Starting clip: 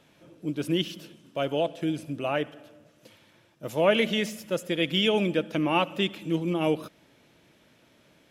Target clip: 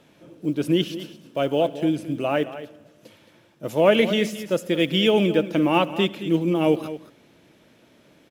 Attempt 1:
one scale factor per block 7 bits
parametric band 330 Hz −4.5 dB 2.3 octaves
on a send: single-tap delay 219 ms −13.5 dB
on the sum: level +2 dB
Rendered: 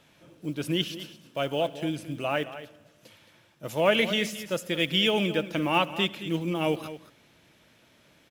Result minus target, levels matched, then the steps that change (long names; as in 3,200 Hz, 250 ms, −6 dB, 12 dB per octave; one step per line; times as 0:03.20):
250 Hz band −3.0 dB
change: parametric band 330 Hz +4.5 dB 2.3 octaves